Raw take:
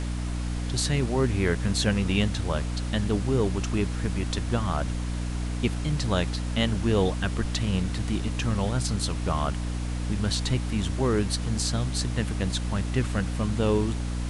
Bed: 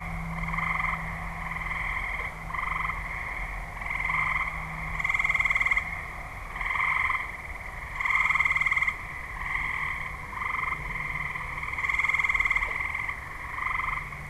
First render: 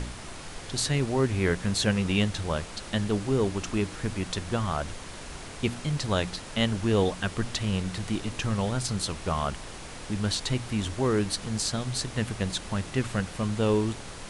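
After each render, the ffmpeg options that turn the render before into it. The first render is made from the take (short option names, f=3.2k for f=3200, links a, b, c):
-af "bandreject=f=60:t=h:w=4,bandreject=f=120:t=h:w=4,bandreject=f=180:t=h:w=4,bandreject=f=240:t=h:w=4,bandreject=f=300:t=h:w=4"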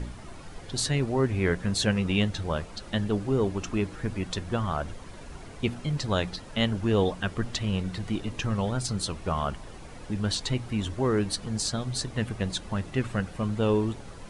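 -af "afftdn=nr=10:nf=-41"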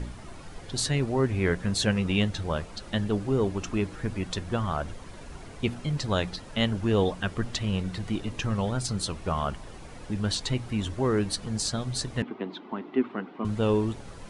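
-filter_complex "[0:a]asettb=1/sr,asplit=3[a][b][c];[a]atrim=end=12.224[d];[b]atrim=start=12.22:end=13.45,asetpts=PTS-STARTPTS,afade=t=in:d=0.004:c=qsin,afade=t=out:st=1.226:d=0.004:c=qsin,highpass=f=240:w=0.5412,highpass=f=240:w=1.3066,equalizer=f=260:t=q:w=4:g=8,equalizer=f=380:t=q:w=4:g=6,equalizer=f=540:t=q:w=4:g=-9,equalizer=f=950:t=q:w=4:g=3,equalizer=f=1.7k:t=q:w=4:g=-8,equalizer=f=2.6k:t=q:w=4:g=-6,lowpass=f=2.9k:w=0.5412,lowpass=f=2.9k:w=1.3066[e];[c]atrim=start=13.446[f];[d][e]acrossfade=d=0.004:c1=hsin:c2=qsin[g];[g][f]acrossfade=d=0.004:c1=qsin:c2=hsin"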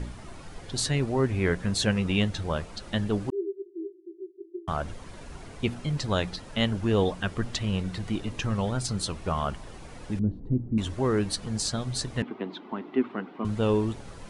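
-filter_complex "[0:a]asettb=1/sr,asplit=3[a][b][c];[a]atrim=end=3.304[d];[b]atrim=start=3.3:end=4.68,asetpts=PTS-STARTPTS,afade=t=in:d=0.004:c=qsin,afade=t=out:st=1.376:d=0.004:c=qsin,asuperpass=centerf=360:order=20:qfactor=4.3[e];[c]atrim=start=4.676[f];[d][e]acrossfade=d=0.004:c1=hsin:c2=qsin[g];[g][f]acrossfade=d=0.004:c1=qsin:c2=hsin,asettb=1/sr,asplit=3[h][i][j];[h]atrim=end=10.194[k];[i]atrim=start=10.19:end=10.78,asetpts=PTS-STARTPTS,afade=t=in:d=0.004:c=qsin,afade=t=out:st=0.586:d=0.004:c=qsin,lowpass=f=280:t=q:w=1.8[l];[j]atrim=start=10.776[m];[k][l]acrossfade=d=0.004:c1=hsin:c2=qsin[n];[n][m]acrossfade=d=0.004:c1=qsin:c2=hsin"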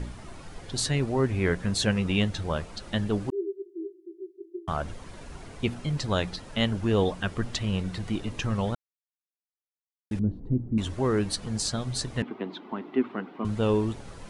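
-filter_complex "[0:a]asplit=3[a][b][c];[a]atrim=end=8.75,asetpts=PTS-STARTPTS,afade=t=out:st=8.746:d=0.004:c=hsin[d];[b]atrim=start=8.75:end=10.11,asetpts=PTS-STARTPTS,volume=0[e];[c]atrim=start=10.11,asetpts=PTS-STARTPTS,afade=t=in:d=0.004:c=hsin[f];[d][e][f]concat=n=3:v=0:a=1"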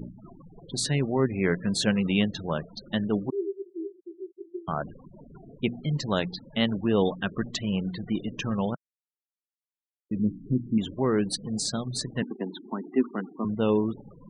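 -af "afftfilt=real='re*gte(hypot(re,im),0.0178)':imag='im*gte(hypot(re,im),0.0178)':win_size=1024:overlap=0.75,lowshelf=f=110:t=q:w=1.5:g=-11.5"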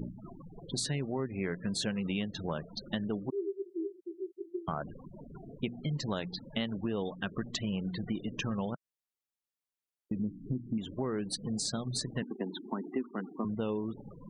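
-af "acompressor=threshold=-31dB:ratio=6"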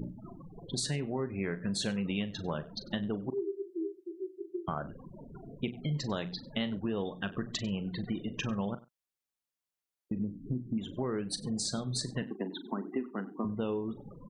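-filter_complex "[0:a]asplit=2[a][b];[b]adelay=40,volume=-13dB[c];[a][c]amix=inputs=2:normalize=0,aecho=1:1:96:0.0944"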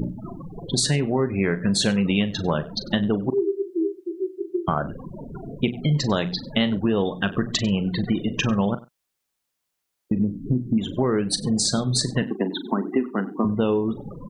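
-af "volume=12dB"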